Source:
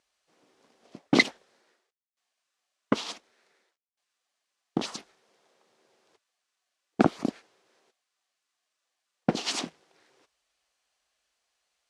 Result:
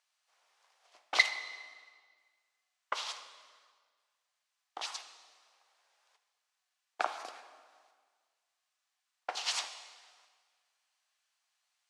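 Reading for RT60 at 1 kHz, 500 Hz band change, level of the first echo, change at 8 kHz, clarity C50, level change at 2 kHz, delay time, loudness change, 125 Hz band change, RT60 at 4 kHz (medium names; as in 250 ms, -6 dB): 1.7 s, -14.5 dB, no echo, -2.5 dB, 10.0 dB, -2.5 dB, no echo, -6.0 dB, under -40 dB, 1.5 s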